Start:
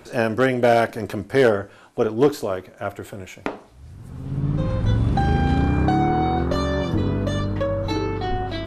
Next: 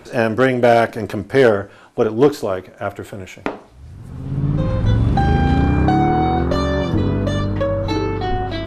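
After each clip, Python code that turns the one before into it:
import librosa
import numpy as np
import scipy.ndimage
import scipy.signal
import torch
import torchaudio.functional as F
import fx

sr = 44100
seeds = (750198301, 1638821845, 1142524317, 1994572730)

y = fx.high_shelf(x, sr, hz=6700.0, db=-4.5)
y = F.gain(torch.from_numpy(y), 4.0).numpy()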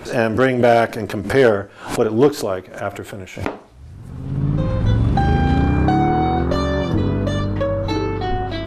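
y = fx.pre_swell(x, sr, db_per_s=120.0)
y = F.gain(torch.from_numpy(y), -1.0).numpy()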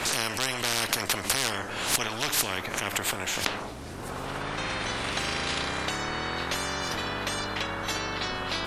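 y = fx.spectral_comp(x, sr, ratio=10.0)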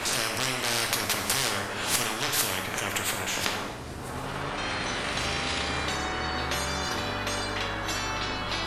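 y = fx.rev_plate(x, sr, seeds[0], rt60_s=1.1, hf_ratio=0.8, predelay_ms=0, drr_db=2.0)
y = F.gain(torch.from_numpy(y), -1.5).numpy()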